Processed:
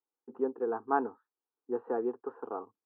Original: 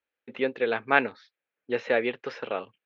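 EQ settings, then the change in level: HPF 180 Hz 6 dB/oct; LPF 1100 Hz 24 dB/oct; fixed phaser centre 580 Hz, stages 6; 0.0 dB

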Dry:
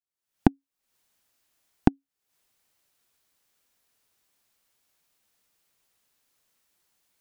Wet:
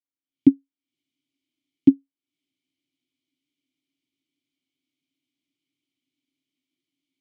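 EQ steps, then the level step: vowel filter i; low shelf 330 Hz +9 dB; fixed phaser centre 320 Hz, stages 8; +8.5 dB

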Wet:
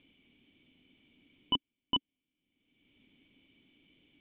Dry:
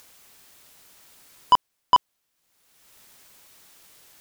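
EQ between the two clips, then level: vocal tract filter i; +8.5 dB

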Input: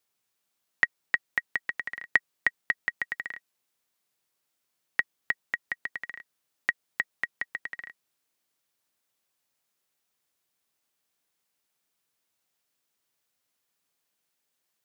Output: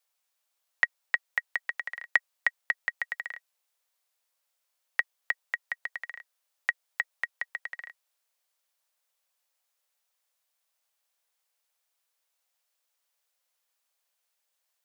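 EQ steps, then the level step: Chebyshev high-pass 500 Hz, order 5; 0.0 dB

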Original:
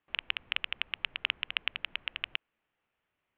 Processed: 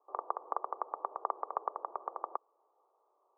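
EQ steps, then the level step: steep high-pass 390 Hz 48 dB/oct; rippled Chebyshev low-pass 1200 Hz, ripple 3 dB; +17.0 dB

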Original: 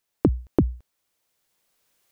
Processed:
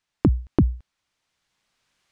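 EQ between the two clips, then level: air absorption 92 m; bell 470 Hz -8.5 dB 1.3 oct; +4.5 dB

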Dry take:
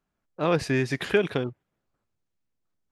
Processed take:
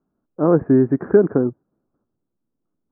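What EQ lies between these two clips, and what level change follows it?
steep low-pass 1500 Hz 48 dB/oct; bell 280 Hz +13.5 dB 1.8 oct; 0.0 dB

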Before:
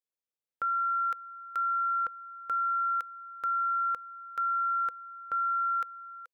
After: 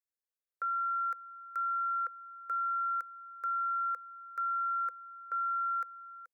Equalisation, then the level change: HPF 470 Hz; fixed phaser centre 850 Hz, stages 6; -3.5 dB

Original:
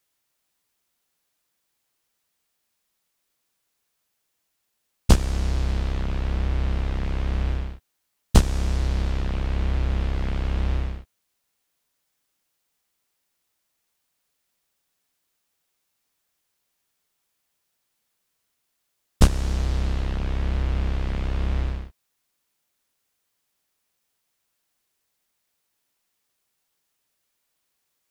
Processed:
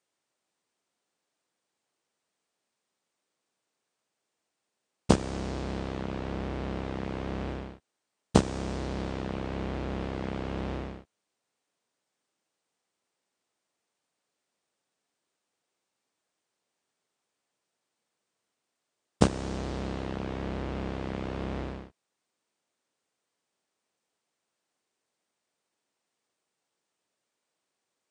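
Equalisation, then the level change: HPF 110 Hz 12 dB/oct; brick-wall FIR low-pass 9600 Hz; bell 430 Hz +8.5 dB 3 oct; -6.5 dB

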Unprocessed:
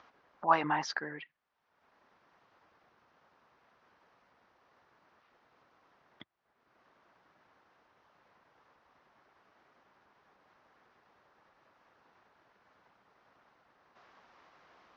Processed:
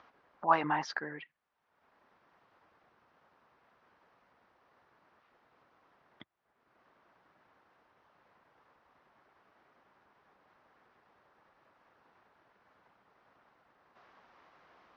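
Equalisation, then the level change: high shelf 6300 Hz -11 dB; 0.0 dB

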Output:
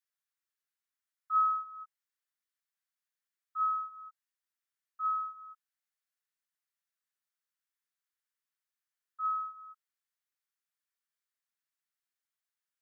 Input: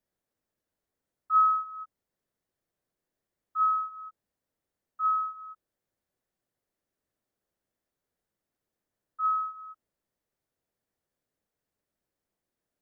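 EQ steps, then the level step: HPF 1200 Hz 24 dB/oct; -3.5 dB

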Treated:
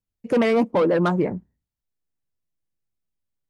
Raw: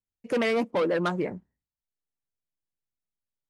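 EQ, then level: dynamic EQ 920 Hz, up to +5 dB, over -40 dBFS, Q 1.4; low shelf 440 Hz +10.5 dB; 0.0 dB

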